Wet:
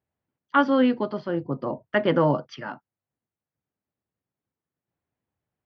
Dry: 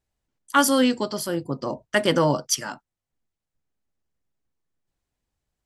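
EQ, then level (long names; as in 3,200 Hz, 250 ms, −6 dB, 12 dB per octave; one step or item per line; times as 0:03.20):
Gaussian smoothing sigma 3.2 samples
high-pass filter 85 Hz 24 dB per octave
0.0 dB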